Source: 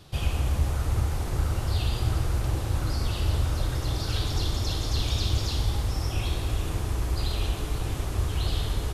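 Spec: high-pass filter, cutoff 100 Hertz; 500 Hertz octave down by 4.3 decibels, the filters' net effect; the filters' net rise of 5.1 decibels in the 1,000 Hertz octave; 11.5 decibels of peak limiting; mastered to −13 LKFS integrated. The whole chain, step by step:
high-pass filter 100 Hz
parametric band 500 Hz −8.5 dB
parametric band 1,000 Hz +9 dB
level +24.5 dB
brickwall limiter −4.5 dBFS

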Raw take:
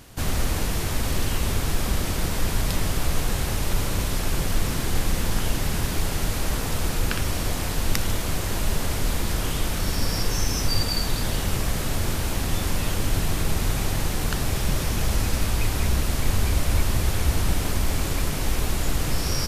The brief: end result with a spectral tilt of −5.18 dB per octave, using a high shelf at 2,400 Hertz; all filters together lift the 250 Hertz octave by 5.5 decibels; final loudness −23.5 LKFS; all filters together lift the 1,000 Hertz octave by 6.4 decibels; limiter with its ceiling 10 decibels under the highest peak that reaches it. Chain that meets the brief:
parametric band 250 Hz +7 dB
parametric band 1,000 Hz +8.5 dB
high-shelf EQ 2,400 Hz −4.5 dB
level +4 dB
brickwall limiter −12 dBFS

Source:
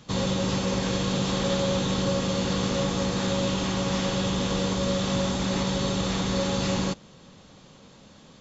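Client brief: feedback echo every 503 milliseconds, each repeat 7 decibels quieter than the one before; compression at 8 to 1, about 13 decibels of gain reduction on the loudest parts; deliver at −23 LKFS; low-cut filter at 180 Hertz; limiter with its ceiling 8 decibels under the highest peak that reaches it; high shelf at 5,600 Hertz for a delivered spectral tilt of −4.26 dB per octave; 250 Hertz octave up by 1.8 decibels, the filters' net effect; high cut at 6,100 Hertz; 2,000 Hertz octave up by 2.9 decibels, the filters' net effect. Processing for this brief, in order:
high-pass filter 180 Hz
low-pass filter 6,100 Hz
parametric band 250 Hz +5.5 dB
parametric band 2,000 Hz +3 dB
high-shelf EQ 5,600 Hz +5.5 dB
downward compressor 8 to 1, threshold −35 dBFS
brickwall limiter −30.5 dBFS
repeating echo 503 ms, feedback 45%, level −7 dB
level +16.5 dB

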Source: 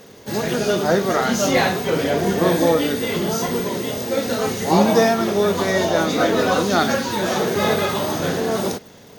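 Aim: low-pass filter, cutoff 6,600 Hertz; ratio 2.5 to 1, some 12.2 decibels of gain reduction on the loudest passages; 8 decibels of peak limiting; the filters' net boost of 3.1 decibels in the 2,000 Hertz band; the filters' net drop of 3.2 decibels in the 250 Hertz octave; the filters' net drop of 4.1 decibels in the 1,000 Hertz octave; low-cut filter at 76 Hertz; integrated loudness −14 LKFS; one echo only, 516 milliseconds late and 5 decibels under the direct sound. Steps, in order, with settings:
high-pass filter 76 Hz
low-pass filter 6,600 Hz
parametric band 250 Hz −4 dB
parametric band 1,000 Hz −7.5 dB
parametric band 2,000 Hz +6.5 dB
downward compressor 2.5 to 1, threshold −32 dBFS
brickwall limiter −24 dBFS
single-tap delay 516 ms −5 dB
level +18 dB

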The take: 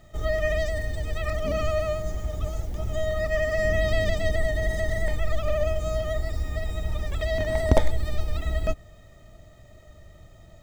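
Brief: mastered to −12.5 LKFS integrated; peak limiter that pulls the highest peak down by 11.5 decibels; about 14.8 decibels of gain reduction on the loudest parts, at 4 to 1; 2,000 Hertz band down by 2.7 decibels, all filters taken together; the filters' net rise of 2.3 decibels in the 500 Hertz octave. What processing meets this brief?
parametric band 500 Hz +3.5 dB
parametric band 2,000 Hz −3 dB
downward compressor 4 to 1, threshold −30 dBFS
level +24 dB
brickwall limiter −1.5 dBFS

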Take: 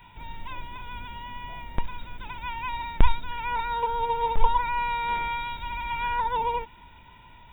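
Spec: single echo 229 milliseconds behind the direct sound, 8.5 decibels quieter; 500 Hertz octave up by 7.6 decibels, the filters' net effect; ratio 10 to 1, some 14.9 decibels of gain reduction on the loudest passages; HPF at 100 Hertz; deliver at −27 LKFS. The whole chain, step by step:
high-pass filter 100 Hz
parametric band 500 Hz +8 dB
downward compressor 10 to 1, threshold −33 dBFS
single-tap delay 229 ms −8.5 dB
level +9.5 dB

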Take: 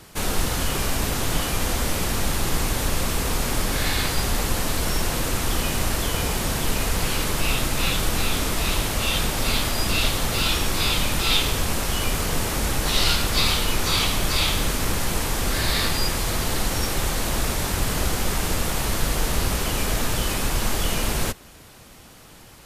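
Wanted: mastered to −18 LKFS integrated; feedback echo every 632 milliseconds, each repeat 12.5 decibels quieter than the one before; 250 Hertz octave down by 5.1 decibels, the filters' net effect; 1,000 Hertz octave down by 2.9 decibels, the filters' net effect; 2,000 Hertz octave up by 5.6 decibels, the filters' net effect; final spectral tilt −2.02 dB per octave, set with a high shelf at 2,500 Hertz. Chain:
parametric band 250 Hz −7 dB
parametric band 1,000 Hz −6.5 dB
parametric band 2,000 Hz +7 dB
high-shelf EQ 2,500 Hz +3.5 dB
repeating echo 632 ms, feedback 24%, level −12.5 dB
level +2.5 dB

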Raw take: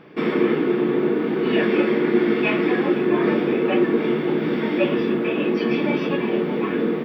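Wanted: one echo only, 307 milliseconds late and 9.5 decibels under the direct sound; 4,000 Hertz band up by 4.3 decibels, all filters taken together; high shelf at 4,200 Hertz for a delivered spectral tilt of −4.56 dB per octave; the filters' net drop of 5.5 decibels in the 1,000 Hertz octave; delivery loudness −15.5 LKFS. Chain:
parametric band 1,000 Hz −7.5 dB
parametric band 4,000 Hz +8.5 dB
high-shelf EQ 4,200 Hz −3.5 dB
single-tap delay 307 ms −9.5 dB
level +5.5 dB

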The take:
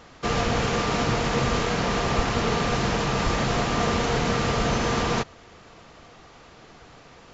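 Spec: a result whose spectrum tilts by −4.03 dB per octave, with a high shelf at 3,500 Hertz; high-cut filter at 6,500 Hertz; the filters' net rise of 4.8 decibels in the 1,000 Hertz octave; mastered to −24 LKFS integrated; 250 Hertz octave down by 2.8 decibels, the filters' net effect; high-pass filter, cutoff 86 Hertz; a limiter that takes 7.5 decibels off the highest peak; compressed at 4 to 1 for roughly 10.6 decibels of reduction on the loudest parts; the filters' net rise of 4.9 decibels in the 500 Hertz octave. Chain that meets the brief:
high-pass filter 86 Hz
low-pass filter 6,500 Hz
parametric band 250 Hz −5.5 dB
parametric band 500 Hz +6 dB
parametric band 1,000 Hz +5.5 dB
high-shelf EQ 3,500 Hz −8.5 dB
downward compressor 4 to 1, threshold −31 dBFS
level +12.5 dB
brickwall limiter −14 dBFS

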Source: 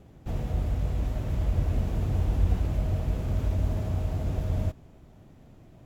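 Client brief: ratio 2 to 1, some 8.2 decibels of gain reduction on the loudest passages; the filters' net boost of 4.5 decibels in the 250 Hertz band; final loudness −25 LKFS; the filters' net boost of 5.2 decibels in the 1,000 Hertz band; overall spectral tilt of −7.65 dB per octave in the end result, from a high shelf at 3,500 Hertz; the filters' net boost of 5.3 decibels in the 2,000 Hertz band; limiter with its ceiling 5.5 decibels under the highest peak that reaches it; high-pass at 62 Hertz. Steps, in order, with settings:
high-pass filter 62 Hz
parametric band 250 Hz +6 dB
parametric band 1,000 Hz +6 dB
parametric band 2,000 Hz +7 dB
high-shelf EQ 3,500 Hz −8 dB
downward compressor 2 to 1, threshold −36 dBFS
level +12.5 dB
brickwall limiter −15.5 dBFS

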